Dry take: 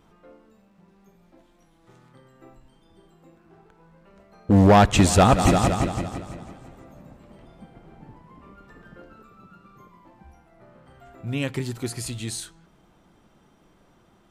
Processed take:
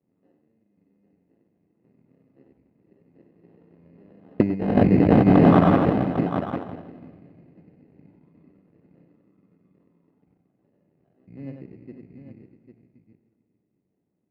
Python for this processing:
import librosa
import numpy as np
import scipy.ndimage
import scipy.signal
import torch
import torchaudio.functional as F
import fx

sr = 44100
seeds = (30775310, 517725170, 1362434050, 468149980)

p1 = fx.cycle_switch(x, sr, every=2, mode='muted')
p2 = fx.doppler_pass(p1, sr, speed_mps=8, closest_m=4.5, pass_at_s=4.74)
p3 = fx.env_lowpass(p2, sr, base_hz=340.0, full_db=-19.0)
p4 = fx.room_shoebox(p3, sr, seeds[0], volume_m3=2900.0, walls='mixed', distance_m=0.35)
p5 = fx.env_lowpass_down(p4, sr, base_hz=360.0, full_db=-17.5)
p6 = p5 + fx.echo_multitap(p5, sr, ms=(58, 94, 486, 800), db=(-12.5, -4.5, -15.5, -8.5), dry=0)
p7 = fx.over_compress(p6, sr, threshold_db=-22.0, ratio=-0.5)
p8 = fx.peak_eq(p7, sr, hz=1300.0, db=3.5, octaves=0.67)
p9 = fx.sample_hold(p8, sr, seeds[1], rate_hz=2300.0, jitter_pct=0)
p10 = p8 + (p9 * 10.0 ** (-3.0 / 20.0))
p11 = scipy.signal.sosfilt(scipy.signal.butter(2, 190.0, 'highpass', fs=sr, output='sos'), p10)
p12 = fx.air_absorb(p11, sr, metres=480.0)
y = p12 * 10.0 ** (7.5 / 20.0)